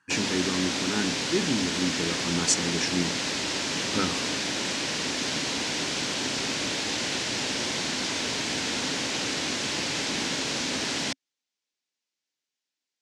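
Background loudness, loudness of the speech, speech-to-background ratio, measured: −27.5 LKFS, −29.5 LKFS, −2.0 dB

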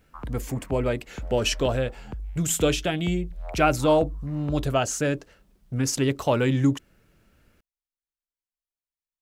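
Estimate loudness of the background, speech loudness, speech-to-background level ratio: −39.0 LKFS, −25.5 LKFS, 13.5 dB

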